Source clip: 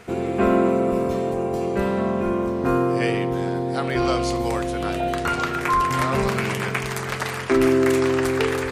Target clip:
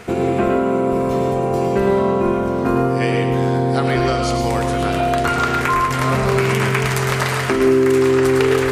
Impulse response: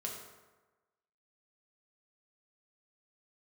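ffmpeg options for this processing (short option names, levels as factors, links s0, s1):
-filter_complex "[0:a]acompressor=threshold=0.0708:ratio=6,asplit=2[s0][s1];[1:a]atrim=start_sample=2205,atrim=end_sample=6174,adelay=107[s2];[s1][s2]afir=irnorm=-1:irlink=0,volume=0.668[s3];[s0][s3]amix=inputs=2:normalize=0,volume=2.37"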